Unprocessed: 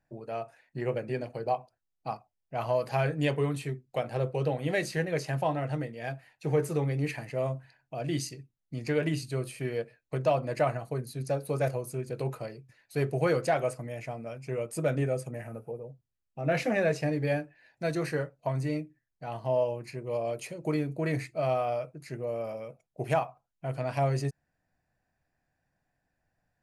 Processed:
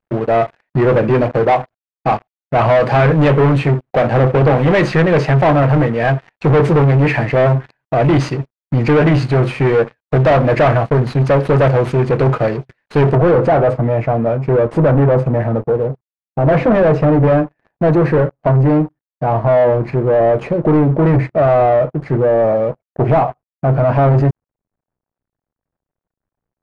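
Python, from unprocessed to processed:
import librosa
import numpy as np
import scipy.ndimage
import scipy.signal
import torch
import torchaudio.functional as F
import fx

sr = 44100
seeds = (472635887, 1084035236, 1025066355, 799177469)

y = fx.cvsd(x, sr, bps=64000)
y = fx.leveller(y, sr, passes=5)
y = fx.lowpass(y, sr, hz=fx.steps((0.0, 2100.0), (13.15, 1100.0)), slope=12)
y = y * librosa.db_to_amplitude(7.5)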